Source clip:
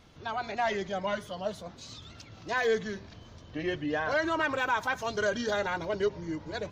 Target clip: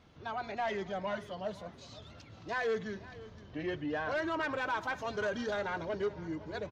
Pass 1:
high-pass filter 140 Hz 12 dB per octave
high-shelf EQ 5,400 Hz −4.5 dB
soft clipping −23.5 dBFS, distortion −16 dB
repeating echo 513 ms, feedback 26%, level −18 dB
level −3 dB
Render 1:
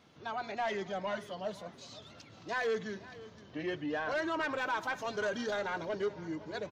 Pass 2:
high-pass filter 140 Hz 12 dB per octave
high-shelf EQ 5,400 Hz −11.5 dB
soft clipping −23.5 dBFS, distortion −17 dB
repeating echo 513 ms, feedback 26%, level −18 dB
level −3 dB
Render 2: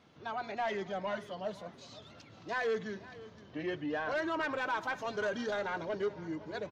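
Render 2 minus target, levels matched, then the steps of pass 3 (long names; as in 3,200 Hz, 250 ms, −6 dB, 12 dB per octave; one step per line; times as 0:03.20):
125 Hz band −3.0 dB
high-pass filter 39 Hz 12 dB per octave
high-shelf EQ 5,400 Hz −11.5 dB
soft clipping −23.5 dBFS, distortion −17 dB
repeating echo 513 ms, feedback 26%, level −18 dB
level −3 dB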